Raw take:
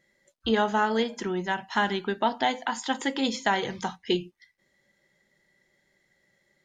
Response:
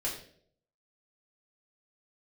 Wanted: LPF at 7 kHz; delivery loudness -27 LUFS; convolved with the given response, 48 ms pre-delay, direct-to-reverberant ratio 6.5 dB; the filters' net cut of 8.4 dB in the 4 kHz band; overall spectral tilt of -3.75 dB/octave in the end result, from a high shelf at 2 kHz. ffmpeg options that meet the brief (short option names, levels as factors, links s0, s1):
-filter_complex "[0:a]lowpass=7000,highshelf=f=2000:g=-6.5,equalizer=f=4000:t=o:g=-5,asplit=2[s0][s1];[1:a]atrim=start_sample=2205,adelay=48[s2];[s1][s2]afir=irnorm=-1:irlink=0,volume=0.299[s3];[s0][s3]amix=inputs=2:normalize=0,volume=1.12"